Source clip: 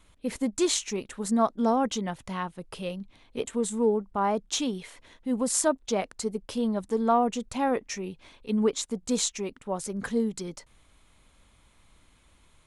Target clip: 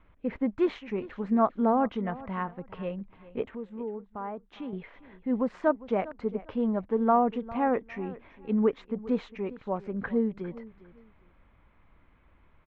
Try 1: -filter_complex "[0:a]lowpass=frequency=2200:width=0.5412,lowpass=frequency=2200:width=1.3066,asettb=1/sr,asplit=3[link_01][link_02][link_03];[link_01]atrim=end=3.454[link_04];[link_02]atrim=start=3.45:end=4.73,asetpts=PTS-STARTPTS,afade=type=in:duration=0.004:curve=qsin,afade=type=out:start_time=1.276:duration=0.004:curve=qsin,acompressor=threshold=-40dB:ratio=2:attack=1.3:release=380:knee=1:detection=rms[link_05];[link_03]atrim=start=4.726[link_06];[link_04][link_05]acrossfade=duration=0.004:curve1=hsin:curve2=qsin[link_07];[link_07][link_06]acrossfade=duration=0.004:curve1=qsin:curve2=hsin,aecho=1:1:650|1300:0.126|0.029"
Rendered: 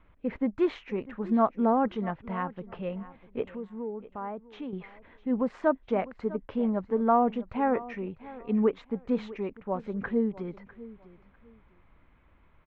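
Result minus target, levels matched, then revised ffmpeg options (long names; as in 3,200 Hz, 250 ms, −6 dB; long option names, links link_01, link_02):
echo 247 ms late
-filter_complex "[0:a]lowpass=frequency=2200:width=0.5412,lowpass=frequency=2200:width=1.3066,asettb=1/sr,asplit=3[link_01][link_02][link_03];[link_01]atrim=end=3.454[link_04];[link_02]atrim=start=3.45:end=4.73,asetpts=PTS-STARTPTS,afade=type=in:duration=0.004:curve=qsin,afade=type=out:start_time=1.276:duration=0.004:curve=qsin,acompressor=threshold=-40dB:ratio=2:attack=1.3:release=380:knee=1:detection=rms[link_05];[link_03]atrim=start=4.726[link_06];[link_04][link_05]acrossfade=duration=0.004:curve1=hsin:curve2=qsin[link_07];[link_07][link_06]acrossfade=duration=0.004:curve1=qsin:curve2=hsin,aecho=1:1:403|806:0.126|0.029"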